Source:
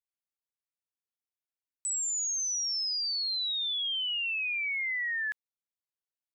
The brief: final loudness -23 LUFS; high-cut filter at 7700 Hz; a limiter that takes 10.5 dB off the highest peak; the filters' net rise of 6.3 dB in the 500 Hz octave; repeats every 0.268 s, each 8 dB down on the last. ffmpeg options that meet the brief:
-af "lowpass=7.7k,equalizer=f=500:t=o:g=8,alimiter=level_in=15dB:limit=-24dB:level=0:latency=1,volume=-15dB,aecho=1:1:268|536|804|1072|1340:0.398|0.159|0.0637|0.0255|0.0102,volume=16dB"

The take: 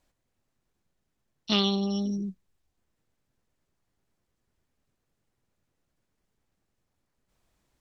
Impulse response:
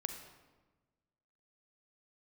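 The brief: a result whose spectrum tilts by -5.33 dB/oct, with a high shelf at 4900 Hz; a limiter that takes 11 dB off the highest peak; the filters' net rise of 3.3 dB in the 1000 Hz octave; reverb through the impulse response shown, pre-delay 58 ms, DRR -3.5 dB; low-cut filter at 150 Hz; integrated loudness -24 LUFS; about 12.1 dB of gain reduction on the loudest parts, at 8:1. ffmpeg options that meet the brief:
-filter_complex "[0:a]highpass=150,equalizer=f=1k:t=o:g=4,highshelf=f=4.9k:g=7,acompressor=threshold=-30dB:ratio=8,alimiter=level_in=2.5dB:limit=-24dB:level=0:latency=1,volume=-2.5dB,asplit=2[a][b];[1:a]atrim=start_sample=2205,adelay=58[c];[b][c]afir=irnorm=-1:irlink=0,volume=3.5dB[d];[a][d]amix=inputs=2:normalize=0,volume=8.5dB"

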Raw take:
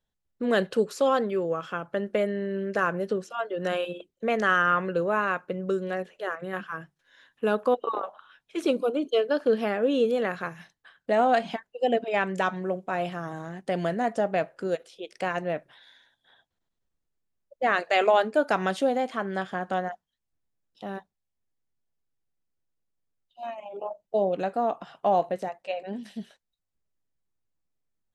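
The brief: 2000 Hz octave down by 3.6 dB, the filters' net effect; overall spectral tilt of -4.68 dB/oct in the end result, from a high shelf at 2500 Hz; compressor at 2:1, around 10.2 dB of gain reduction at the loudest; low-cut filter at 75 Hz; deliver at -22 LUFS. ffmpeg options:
-af "highpass=75,equalizer=f=2k:t=o:g=-3.5,highshelf=f=2.5k:g=-3.5,acompressor=threshold=-37dB:ratio=2,volume=14.5dB"

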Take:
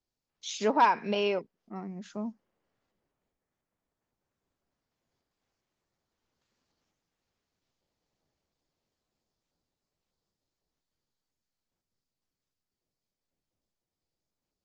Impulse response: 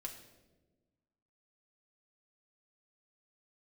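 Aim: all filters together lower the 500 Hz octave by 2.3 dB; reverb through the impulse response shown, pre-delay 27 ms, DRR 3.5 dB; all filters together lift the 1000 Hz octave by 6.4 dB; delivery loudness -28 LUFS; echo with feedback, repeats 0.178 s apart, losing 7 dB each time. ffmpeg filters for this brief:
-filter_complex "[0:a]equalizer=f=500:t=o:g=-5,equalizer=f=1k:t=o:g=8,aecho=1:1:178|356|534|712|890:0.447|0.201|0.0905|0.0407|0.0183,asplit=2[a][b];[1:a]atrim=start_sample=2205,adelay=27[c];[b][c]afir=irnorm=-1:irlink=0,volume=-1dB[d];[a][d]amix=inputs=2:normalize=0,volume=-7.5dB"

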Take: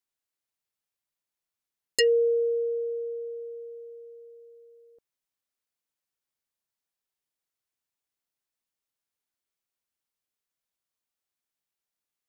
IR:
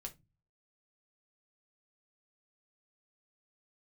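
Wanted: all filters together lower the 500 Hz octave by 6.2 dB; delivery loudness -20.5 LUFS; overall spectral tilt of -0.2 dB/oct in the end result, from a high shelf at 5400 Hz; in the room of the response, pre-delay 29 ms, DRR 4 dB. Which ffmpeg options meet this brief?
-filter_complex "[0:a]equalizer=f=500:t=o:g=-6.5,highshelf=f=5.4k:g=3,asplit=2[a][b];[1:a]atrim=start_sample=2205,adelay=29[c];[b][c]afir=irnorm=-1:irlink=0,volume=0dB[d];[a][d]amix=inputs=2:normalize=0,volume=10dB"

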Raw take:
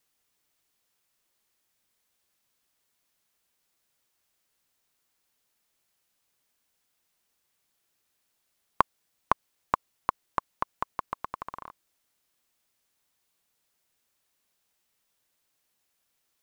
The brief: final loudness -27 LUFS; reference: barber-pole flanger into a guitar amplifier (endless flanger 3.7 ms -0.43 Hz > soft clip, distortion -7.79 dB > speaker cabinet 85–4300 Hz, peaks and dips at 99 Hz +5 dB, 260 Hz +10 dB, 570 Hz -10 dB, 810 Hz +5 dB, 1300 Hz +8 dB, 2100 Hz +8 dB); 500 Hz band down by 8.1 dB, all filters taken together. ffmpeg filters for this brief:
-filter_complex "[0:a]equalizer=f=500:t=o:g=-8,asplit=2[a][b];[b]adelay=3.7,afreqshift=-0.43[c];[a][c]amix=inputs=2:normalize=1,asoftclip=threshold=-24dB,highpass=85,equalizer=f=99:t=q:w=4:g=5,equalizer=f=260:t=q:w=4:g=10,equalizer=f=570:t=q:w=4:g=-10,equalizer=f=810:t=q:w=4:g=5,equalizer=f=1.3k:t=q:w=4:g=8,equalizer=f=2.1k:t=q:w=4:g=8,lowpass=f=4.3k:w=0.5412,lowpass=f=4.3k:w=1.3066,volume=12.5dB"

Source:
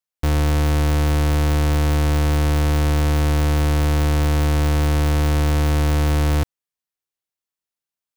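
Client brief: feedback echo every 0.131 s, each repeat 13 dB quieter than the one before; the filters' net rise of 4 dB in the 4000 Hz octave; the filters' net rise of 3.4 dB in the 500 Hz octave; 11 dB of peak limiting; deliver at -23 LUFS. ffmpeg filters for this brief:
-af "equalizer=f=500:t=o:g=4,equalizer=f=4k:t=o:g=5,alimiter=limit=-23.5dB:level=0:latency=1,aecho=1:1:131|262|393:0.224|0.0493|0.0108,volume=6.5dB"

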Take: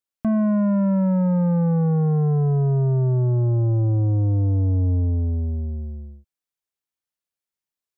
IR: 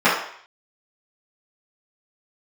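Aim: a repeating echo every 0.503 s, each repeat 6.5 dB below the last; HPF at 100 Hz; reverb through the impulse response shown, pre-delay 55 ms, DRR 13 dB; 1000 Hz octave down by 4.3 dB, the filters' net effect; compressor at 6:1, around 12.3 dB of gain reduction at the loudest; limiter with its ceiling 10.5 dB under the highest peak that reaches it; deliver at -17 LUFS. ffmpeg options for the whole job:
-filter_complex "[0:a]highpass=100,equalizer=f=1k:t=o:g=-5.5,acompressor=threshold=-31dB:ratio=6,alimiter=level_in=5.5dB:limit=-24dB:level=0:latency=1,volume=-5.5dB,aecho=1:1:503|1006|1509|2012|2515|3018:0.473|0.222|0.105|0.0491|0.0231|0.0109,asplit=2[a][b];[1:a]atrim=start_sample=2205,adelay=55[c];[b][c]afir=irnorm=-1:irlink=0,volume=-37dB[d];[a][d]amix=inputs=2:normalize=0,volume=18dB"

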